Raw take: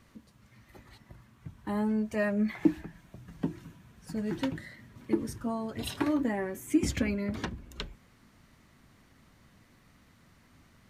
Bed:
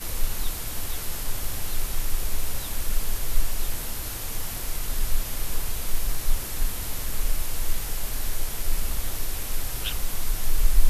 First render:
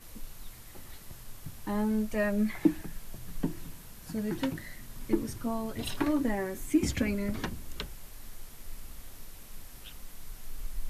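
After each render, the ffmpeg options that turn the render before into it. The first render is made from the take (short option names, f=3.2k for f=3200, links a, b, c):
-filter_complex "[1:a]volume=-18dB[a];[0:a][a]amix=inputs=2:normalize=0"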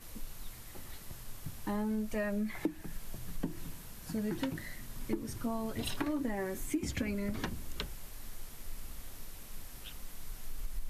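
-af "acompressor=threshold=-31dB:ratio=5"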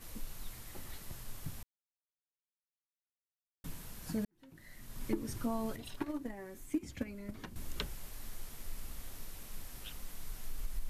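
-filter_complex "[0:a]asettb=1/sr,asplit=3[a][b][c];[a]atrim=end=5.764[d];[b]atrim=start=5.76:end=7.56,asetpts=PTS-STARTPTS,afade=t=in:d=0.004:c=qsin,afade=t=out:st=1.796:d=0.004:c=qsin,agate=range=-11dB:threshold=-33dB:ratio=16:release=100:detection=peak[e];[c]atrim=start=7.556[f];[d][e]acrossfade=d=0.004:c1=hsin:c2=qsin[g];[g][f]acrossfade=d=0.004:c1=qsin:c2=hsin,asplit=4[h][i][j][k];[h]atrim=end=1.63,asetpts=PTS-STARTPTS,afade=t=out:st=1.626:d=0.004:c=hsin[l];[i]atrim=start=1.63:end=3.64,asetpts=PTS-STARTPTS,volume=0[m];[j]atrim=start=3.64:end=4.25,asetpts=PTS-STARTPTS,afade=t=in:d=0.004:c=hsin,afade=t=out:st=0.606:d=0.004:c=hsin[n];[k]atrim=start=4.25,asetpts=PTS-STARTPTS,afade=t=in:d=0.8:c=qua[o];[l][m][n][o]concat=n=4:v=0:a=1"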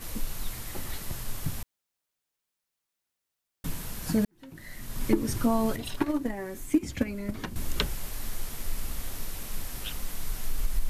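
-af "volume=11dB"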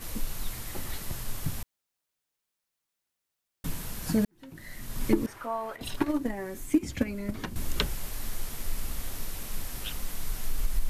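-filter_complex "[0:a]asettb=1/sr,asplit=3[a][b][c];[a]atrim=end=5.264[d];[b]atrim=start=5.26:end=5.81,asetpts=PTS-STARTPTS,afade=t=in:d=0.004:c=qsin,afade=t=out:st=0.546:d=0.004:c=qsin,acrossover=split=560 2300:gain=0.0631 1 0.158[e][f][g];[e][f][g]amix=inputs=3:normalize=0[h];[c]atrim=start=5.806[i];[d][h]acrossfade=d=0.004:c1=hsin:c2=qsin[j];[j][i]acrossfade=d=0.004:c1=qsin:c2=hsin"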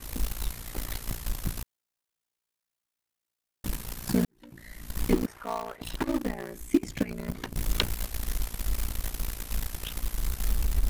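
-filter_complex "[0:a]aeval=exprs='val(0)*sin(2*PI*29*n/s)':c=same,asplit=2[a][b];[b]acrusher=bits=4:mix=0:aa=0.000001,volume=-8dB[c];[a][c]amix=inputs=2:normalize=0"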